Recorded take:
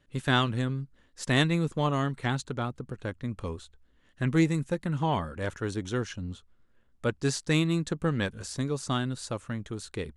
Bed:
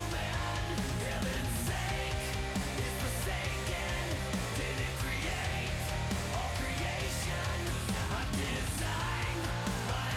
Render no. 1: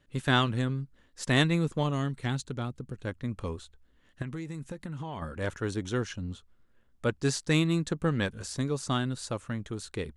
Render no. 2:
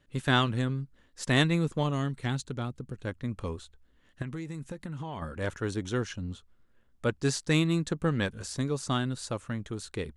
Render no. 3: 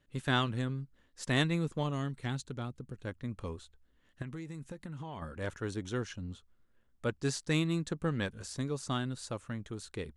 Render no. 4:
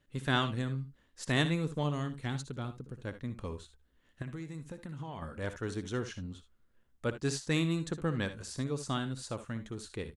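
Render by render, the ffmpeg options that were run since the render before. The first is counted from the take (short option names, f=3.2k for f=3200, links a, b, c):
-filter_complex "[0:a]asettb=1/sr,asplit=3[a][b][c];[a]atrim=end=1.834[d];[b]atrim=start=1.83:end=3.07,asetpts=PTS-STARTPTS,afade=t=in:d=0.004:c=qsin,afade=t=out:st=1.236:d=0.004:c=qsin,equalizer=f=1k:w=0.49:g=-6.5[e];[c]atrim=start=3.066[f];[d][e]acrossfade=d=0.004:c1=hsin:c2=qsin[g];[g][f]acrossfade=d=0.004:c1=qsin:c2=hsin,asettb=1/sr,asplit=3[h][i][j];[h]atrim=end=4.224[k];[i]atrim=start=4.22:end=5.22,asetpts=PTS-STARTPTS,afade=t=in:d=0.004:c=qsin,afade=t=out:st=0.996:d=0.004:c=qsin,acompressor=threshold=-33dB:ratio=16:attack=3.2:release=140:knee=1:detection=peak[l];[j]atrim=start=5.216[m];[k][l]acrossfade=d=0.004:c1=hsin:c2=qsin[n];[n][m]acrossfade=d=0.004:c1=qsin:c2=hsin"
-af anull
-af "volume=-5dB"
-af "aecho=1:1:61|75:0.224|0.168"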